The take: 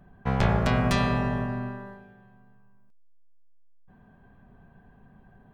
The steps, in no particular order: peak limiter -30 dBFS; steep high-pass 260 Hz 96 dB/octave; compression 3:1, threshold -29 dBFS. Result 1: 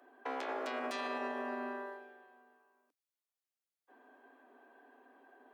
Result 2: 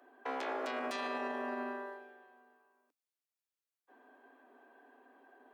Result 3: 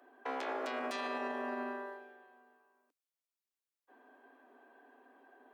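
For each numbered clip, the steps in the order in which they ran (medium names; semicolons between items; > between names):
compression > steep high-pass > peak limiter; steep high-pass > peak limiter > compression; steep high-pass > compression > peak limiter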